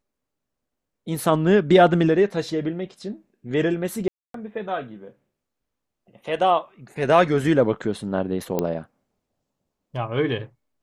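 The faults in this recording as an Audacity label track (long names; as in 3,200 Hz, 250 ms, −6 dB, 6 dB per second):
4.080000	4.340000	drop-out 263 ms
8.590000	8.590000	click −10 dBFS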